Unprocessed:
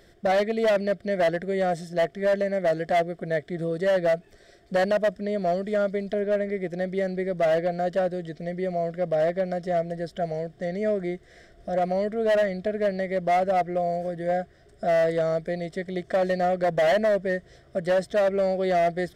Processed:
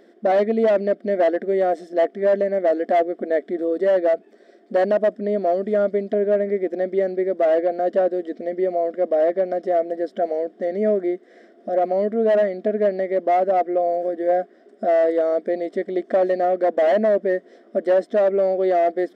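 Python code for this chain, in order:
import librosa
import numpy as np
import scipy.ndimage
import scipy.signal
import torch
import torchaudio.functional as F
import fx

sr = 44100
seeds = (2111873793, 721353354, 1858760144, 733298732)

p1 = fx.tilt_eq(x, sr, slope=-4.0)
p2 = fx.rider(p1, sr, range_db=3, speed_s=0.5)
p3 = p1 + (p2 * librosa.db_to_amplitude(-2.0))
p4 = fx.brickwall_highpass(p3, sr, low_hz=210.0)
y = p4 * librosa.db_to_amplitude(-3.0)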